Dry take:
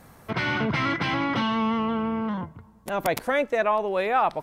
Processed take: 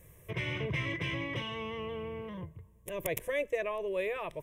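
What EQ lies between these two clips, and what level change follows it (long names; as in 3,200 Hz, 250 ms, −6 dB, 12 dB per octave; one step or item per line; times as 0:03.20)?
phaser with its sweep stopped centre 580 Hz, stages 4
phaser with its sweep stopped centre 1,900 Hz, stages 4
0.0 dB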